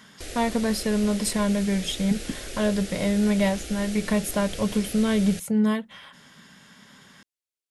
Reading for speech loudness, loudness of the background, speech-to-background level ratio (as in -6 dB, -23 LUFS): -25.0 LUFS, -36.5 LUFS, 11.5 dB